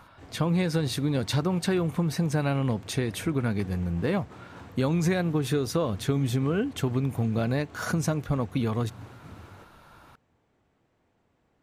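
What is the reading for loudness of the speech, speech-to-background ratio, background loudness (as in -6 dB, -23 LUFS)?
-27.5 LUFS, 19.0 dB, -46.5 LUFS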